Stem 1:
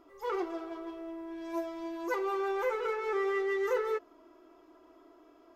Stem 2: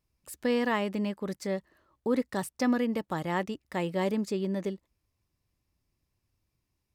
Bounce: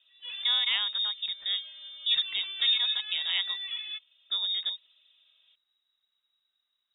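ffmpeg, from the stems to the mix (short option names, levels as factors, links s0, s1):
-filter_complex "[0:a]volume=0.473[s0];[1:a]volume=1,asplit=3[s1][s2][s3];[s1]atrim=end=3.62,asetpts=PTS-STARTPTS,afade=t=out:st=3.616:d=0.004:c=hsin[s4];[s2]atrim=start=3.62:end=4.3,asetpts=PTS-STARTPTS,volume=0[s5];[s3]atrim=start=4.3,asetpts=PTS-STARTPTS,afade=t=in:d=0.004:c=hsin[s6];[s4][s5][s6]concat=n=3:v=0:a=1[s7];[s0][s7]amix=inputs=2:normalize=0,lowpass=f=3300:t=q:w=0.5098,lowpass=f=3300:t=q:w=0.6013,lowpass=f=3300:t=q:w=0.9,lowpass=f=3300:t=q:w=2.563,afreqshift=-3900"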